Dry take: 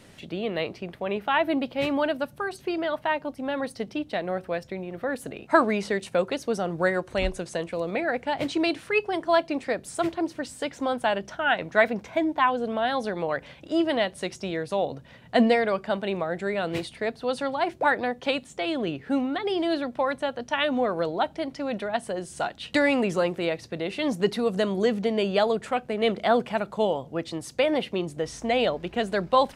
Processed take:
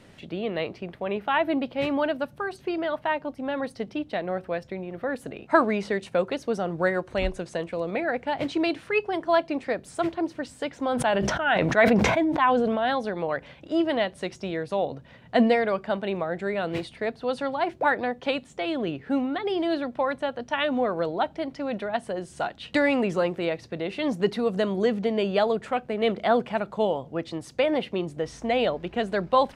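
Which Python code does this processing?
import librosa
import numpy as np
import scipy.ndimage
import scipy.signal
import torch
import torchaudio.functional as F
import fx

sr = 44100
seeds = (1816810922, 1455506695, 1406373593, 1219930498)

y = fx.high_shelf(x, sr, hz=5700.0, db=-10.0)
y = fx.sustainer(y, sr, db_per_s=22.0, at=(10.83, 12.98))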